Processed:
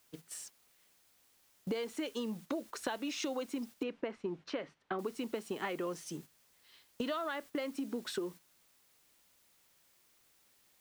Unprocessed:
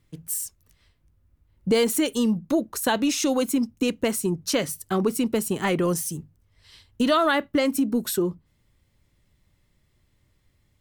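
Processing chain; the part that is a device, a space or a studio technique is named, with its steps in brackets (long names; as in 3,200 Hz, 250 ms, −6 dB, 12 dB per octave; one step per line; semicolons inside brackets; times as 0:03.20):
baby monitor (band-pass filter 330–4,000 Hz; downward compressor 10 to 1, threshold −33 dBFS, peak gain reduction 16 dB; white noise bed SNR 20 dB; noise gate −48 dBFS, range −8 dB)
0:03.83–0:04.99: low-pass filter 2,400 Hz 12 dB per octave
level −1 dB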